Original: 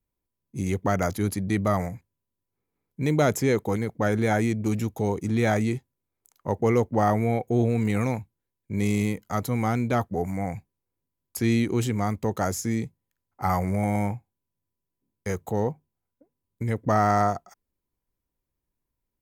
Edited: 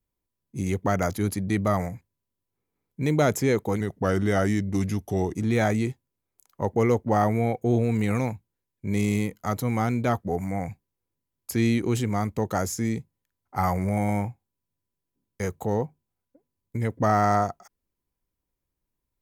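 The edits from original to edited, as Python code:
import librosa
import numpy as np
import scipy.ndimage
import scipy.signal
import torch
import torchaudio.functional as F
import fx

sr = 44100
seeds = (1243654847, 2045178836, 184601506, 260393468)

y = fx.edit(x, sr, fx.speed_span(start_s=3.8, length_s=1.4, speed=0.91), tone=tone)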